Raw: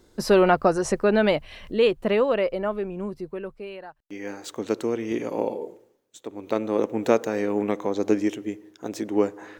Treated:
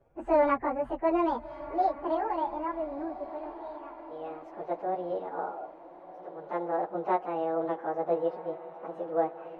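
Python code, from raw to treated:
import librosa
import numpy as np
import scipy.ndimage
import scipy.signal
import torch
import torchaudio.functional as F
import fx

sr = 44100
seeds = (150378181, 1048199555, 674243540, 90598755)

y = fx.pitch_bins(x, sr, semitones=8.0)
y = scipy.signal.sosfilt(scipy.signal.butter(2, 1300.0, 'lowpass', fs=sr, output='sos'), y)
y = fx.echo_diffused(y, sr, ms=1332, feedback_pct=52, wet_db=-14.5)
y = F.gain(torch.from_numpy(y), -3.5).numpy()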